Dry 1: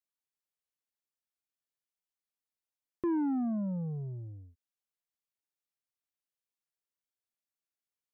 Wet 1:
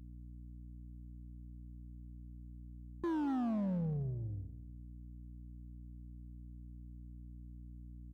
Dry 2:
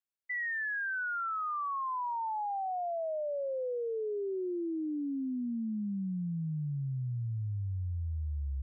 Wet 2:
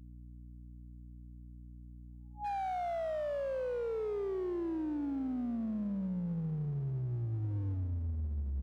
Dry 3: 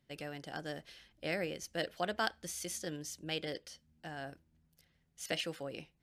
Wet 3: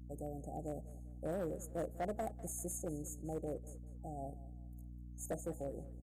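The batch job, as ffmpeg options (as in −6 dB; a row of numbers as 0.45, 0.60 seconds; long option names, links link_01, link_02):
-filter_complex "[0:a]afftfilt=real='re*(1-between(b*sr/4096,830,6400))':imag='im*(1-between(b*sr/4096,830,6400))':win_size=4096:overlap=0.75,adynamicequalizer=threshold=0.00158:dfrequency=100:dqfactor=6.5:tfrequency=100:tqfactor=6.5:attack=5:release=100:ratio=0.375:range=2.5:mode=boostabove:tftype=bell,aeval=exprs='val(0)+0.00355*(sin(2*PI*60*n/s)+sin(2*PI*2*60*n/s)/2+sin(2*PI*3*60*n/s)/3+sin(2*PI*4*60*n/s)/4+sin(2*PI*5*60*n/s)/5)':channel_layout=same,asoftclip=type=hard:threshold=-33.5dB,asplit=2[link_01][link_02];[link_02]aecho=0:1:198|396|594:0.126|0.0491|0.0191[link_03];[link_01][link_03]amix=inputs=2:normalize=0"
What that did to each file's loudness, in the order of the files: −9.5, −1.5, −4.0 LU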